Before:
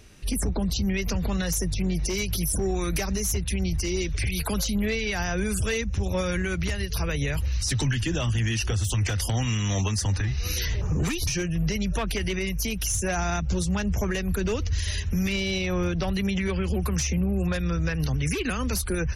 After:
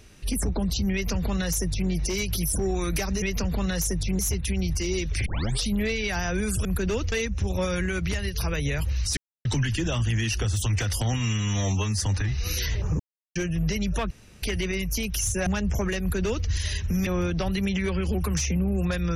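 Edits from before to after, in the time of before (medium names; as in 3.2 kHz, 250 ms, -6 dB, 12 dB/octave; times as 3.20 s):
0.93–1.90 s: copy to 3.22 s
4.29 s: tape start 0.40 s
7.73 s: insert silence 0.28 s
9.42–9.99 s: stretch 1.5×
10.99–11.35 s: mute
12.10 s: insert room tone 0.32 s
13.14–13.69 s: delete
14.23–14.70 s: copy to 5.68 s
15.29–15.68 s: delete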